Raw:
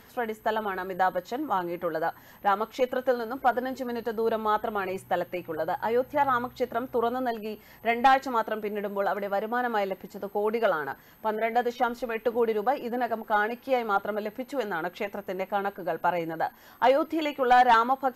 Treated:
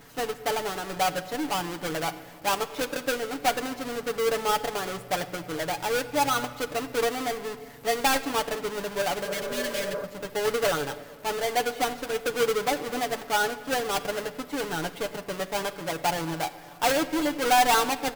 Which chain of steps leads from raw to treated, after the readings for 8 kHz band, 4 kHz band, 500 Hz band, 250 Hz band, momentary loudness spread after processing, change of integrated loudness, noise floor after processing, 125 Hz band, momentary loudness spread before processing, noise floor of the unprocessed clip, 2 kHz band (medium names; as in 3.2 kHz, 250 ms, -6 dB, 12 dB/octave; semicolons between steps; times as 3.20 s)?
no reading, +10.0 dB, -1.0 dB, 0.0 dB, 8 LU, 0.0 dB, -46 dBFS, +4.0 dB, 10 LU, -53 dBFS, +1.5 dB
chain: square wave that keeps the level; spectral replace 9.27–10.02 s, 260–1600 Hz before; comb 6.9 ms, depth 60%; word length cut 8-bit, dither none; simulated room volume 3600 m³, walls mixed, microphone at 0.61 m; trim -5.5 dB